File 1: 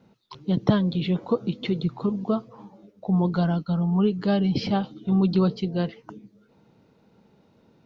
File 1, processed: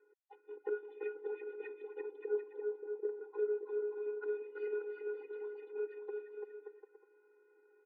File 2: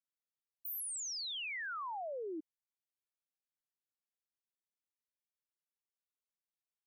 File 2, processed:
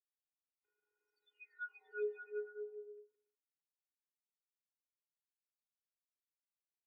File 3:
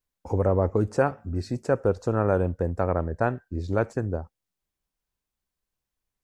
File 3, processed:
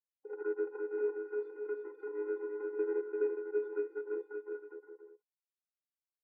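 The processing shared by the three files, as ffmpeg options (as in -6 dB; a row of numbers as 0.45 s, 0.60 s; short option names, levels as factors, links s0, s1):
-af "highpass=f=110:w=0.5412,highpass=f=110:w=1.3066,equalizer=f=690:w=5.6:g=6,acompressor=threshold=0.0794:ratio=6,aeval=exprs='(tanh(14.1*val(0)+0.3)-tanh(0.3))/14.1':c=same,aeval=exprs='val(0)*gte(abs(val(0)),0.00126)':c=same,afftfilt=real='hypot(re,im)*cos(PI*b)':imag='0':win_size=512:overlap=0.75,aecho=1:1:340|578|744.6|861.2|942.9:0.631|0.398|0.251|0.158|0.1,highpass=f=230:t=q:w=0.5412,highpass=f=230:t=q:w=1.307,lowpass=f=2200:t=q:w=0.5176,lowpass=f=2200:t=q:w=0.7071,lowpass=f=2200:t=q:w=1.932,afreqshift=-270,afftfilt=real='re*eq(mod(floor(b*sr/1024/260),2),1)':imag='im*eq(mod(floor(b*sr/1024/260),2),1)':win_size=1024:overlap=0.75,volume=1.33"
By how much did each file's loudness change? -16.5 LU, -5.5 LU, -11.5 LU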